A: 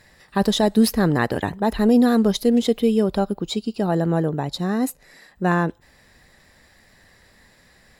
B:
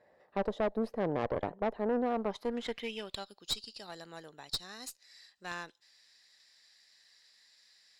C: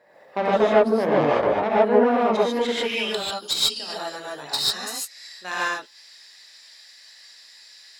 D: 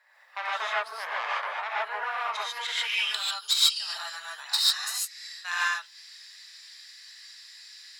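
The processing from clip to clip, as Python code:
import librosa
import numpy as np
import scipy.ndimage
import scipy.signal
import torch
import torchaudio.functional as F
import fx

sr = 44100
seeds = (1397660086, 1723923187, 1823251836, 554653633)

y1 = fx.filter_sweep_bandpass(x, sr, from_hz=570.0, to_hz=4800.0, start_s=2.03, end_s=3.35, q=2.3)
y1 = fx.rider(y1, sr, range_db=4, speed_s=0.5)
y1 = fx.tube_stage(y1, sr, drive_db=25.0, bias=0.7)
y2 = fx.highpass(y1, sr, hz=410.0, slope=6)
y2 = fx.rev_gated(y2, sr, seeds[0], gate_ms=170, shape='rising', drr_db=-7.0)
y2 = F.gain(torch.from_numpy(y2), 8.5).numpy()
y3 = scipy.signal.sosfilt(scipy.signal.butter(4, 1100.0, 'highpass', fs=sr, output='sos'), y2)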